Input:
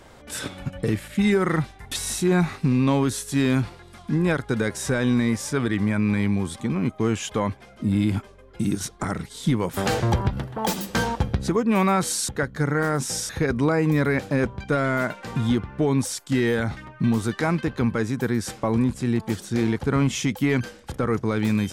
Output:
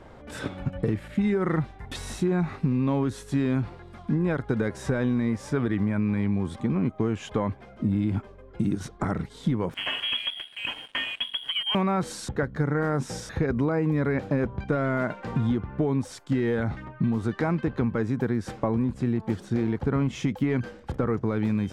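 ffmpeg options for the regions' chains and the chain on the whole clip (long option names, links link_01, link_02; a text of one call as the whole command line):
ffmpeg -i in.wav -filter_complex "[0:a]asettb=1/sr,asplit=3[link_01][link_02][link_03];[link_01]atrim=end=9.744[link_04];[link_02]atrim=start=9.74:end=11.75,asetpts=PTS-STARTPTS,afade=type=in:duration=0.004:curve=qsin,afade=type=out:start_time=2.006:duration=0.004:curve=qsin,lowpass=frequency=2900:width_type=q:width=0.5098,lowpass=frequency=2900:width_type=q:width=0.6013,lowpass=frequency=2900:width_type=q:width=0.9,lowpass=frequency=2900:width_type=q:width=2.563,afreqshift=-3400,bandreject=frequency=1300:width=16,aeval=exprs='sgn(val(0))*max(abs(val(0))-0.0112,0)':channel_layout=same[link_05];[link_03]atrim=start=11.746[link_06];[link_04][link_05]acrossfade=duration=0.004:curve1=hsin:curve2=qsin[link_07];[link_07][link_06]acrossfade=duration=0.004:curve1=qsin:curve2=hsin,lowpass=frequency=1200:poles=1,acompressor=threshold=-23dB:ratio=6,volume=2dB" out.wav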